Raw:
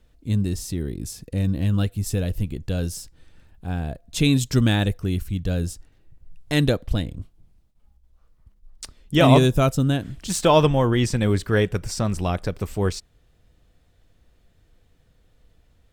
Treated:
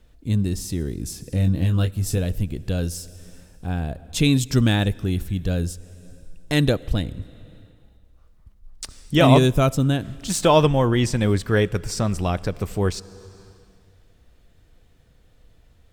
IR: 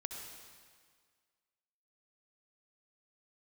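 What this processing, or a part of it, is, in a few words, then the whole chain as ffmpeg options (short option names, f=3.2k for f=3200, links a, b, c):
compressed reverb return: -filter_complex "[0:a]asplit=2[a][b];[1:a]atrim=start_sample=2205[c];[b][c]afir=irnorm=-1:irlink=0,acompressor=threshold=-35dB:ratio=6,volume=-3.5dB[d];[a][d]amix=inputs=2:normalize=0,asettb=1/sr,asplit=3[e][f][g];[e]atrim=end=1.324[h];[f]atrim=start=1.32:end=2.18,asetpts=PTS-STARTPTS,afade=t=in:d=0.004:c=qsin,afade=t=out:st=0.856:d=0.004:c=qsin,asplit=2[i][j];[j]adelay=22,volume=-7dB[k];[i][k]amix=inputs=2:normalize=0,atrim=end_sample=37926[l];[g]atrim=start=2.176[m];[h][l]acrossfade=d=0.004:c1=hsin:c2=qsin[n];[n][m]acrossfade=d=0.004:c1=qsin:c2=hsin"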